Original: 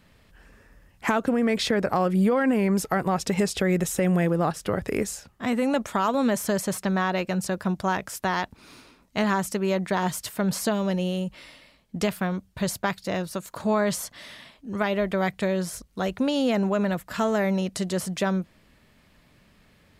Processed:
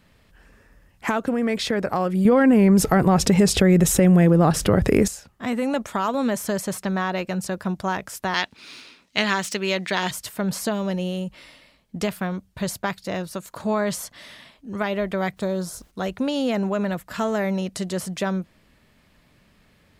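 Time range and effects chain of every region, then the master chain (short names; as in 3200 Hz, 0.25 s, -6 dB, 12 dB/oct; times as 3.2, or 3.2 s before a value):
2.25–5.08 low shelf 400 Hz +8.5 dB + fast leveller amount 50%
8.34–10.11 median filter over 3 samples + weighting filter D
15.36–15.9 band shelf 2300 Hz -10 dB 1 oct + added noise pink -60 dBFS
whole clip: dry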